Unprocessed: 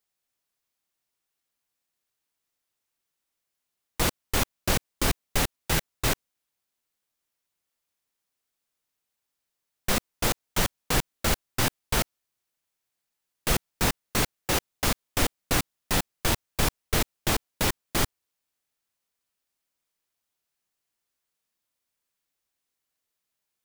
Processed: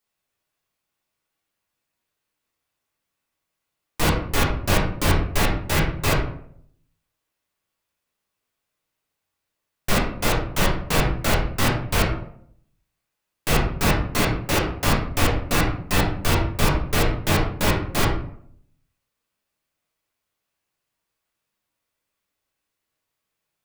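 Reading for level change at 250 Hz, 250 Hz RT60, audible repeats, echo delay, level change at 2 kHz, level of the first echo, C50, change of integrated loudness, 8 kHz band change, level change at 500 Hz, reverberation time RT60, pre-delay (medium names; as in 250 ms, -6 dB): +7.5 dB, 0.80 s, no echo, no echo, +6.0 dB, no echo, 5.0 dB, +5.0 dB, 0.0 dB, +7.0 dB, 0.65 s, 6 ms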